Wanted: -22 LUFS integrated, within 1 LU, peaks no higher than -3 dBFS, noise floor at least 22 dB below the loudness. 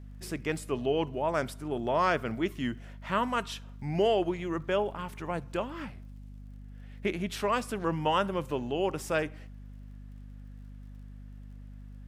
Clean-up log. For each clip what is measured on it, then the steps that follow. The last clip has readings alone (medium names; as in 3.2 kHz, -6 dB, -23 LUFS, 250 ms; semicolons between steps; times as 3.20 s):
tick rate 27 per s; hum 50 Hz; highest harmonic 250 Hz; hum level -43 dBFS; loudness -31.5 LUFS; peak level -13.0 dBFS; loudness target -22.0 LUFS
-> de-click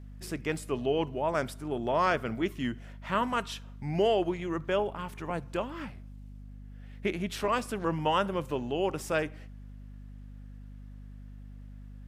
tick rate 0 per s; hum 50 Hz; highest harmonic 250 Hz; hum level -43 dBFS
-> hum notches 50/100/150/200/250 Hz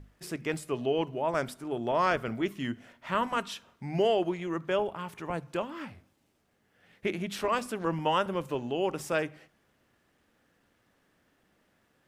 hum not found; loudness -31.5 LUFS; peak level -13.0 dBFS; loudness target -22.0 LUFS
-> trim +9.5 dB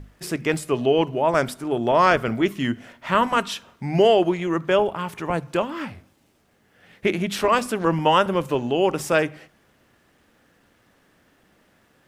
loudness -22.0 LUFS; peak level -3.5 dBFS; noise floor -62 dBFS